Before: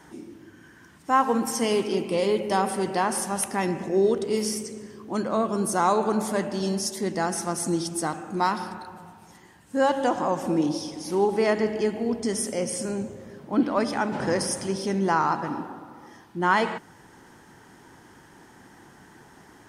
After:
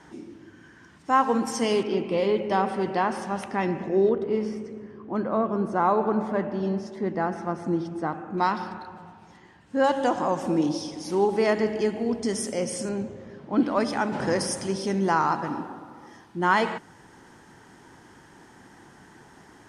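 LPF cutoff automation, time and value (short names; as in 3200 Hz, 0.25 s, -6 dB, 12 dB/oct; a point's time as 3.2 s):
6800 Hz
from 1.83 s 3300 Hz
from 4.09 s 1800 Hz
from 8.38 s 4300 Hz
from 9.84 s 8600 Hz
from 12.89 s 4700 Hz
from 13.57 s 10000 Hz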